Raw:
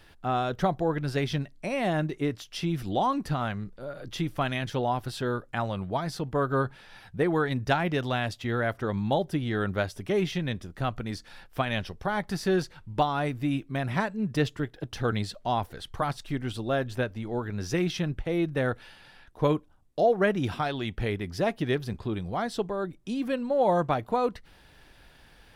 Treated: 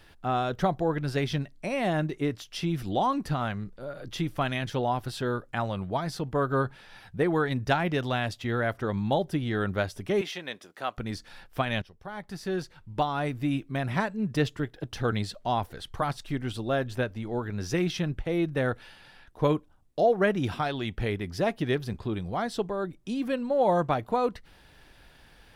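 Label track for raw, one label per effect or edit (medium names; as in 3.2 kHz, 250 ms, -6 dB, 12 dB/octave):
10.210000	10.980000	high-pass 470 Hz
11.820000	13.430000	fade in, from -16.5 dB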